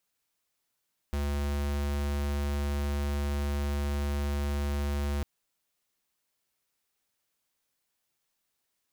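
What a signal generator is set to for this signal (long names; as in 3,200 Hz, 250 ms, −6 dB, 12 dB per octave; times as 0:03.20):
tone square 71.8 Hz −30 dBFS 4.10 s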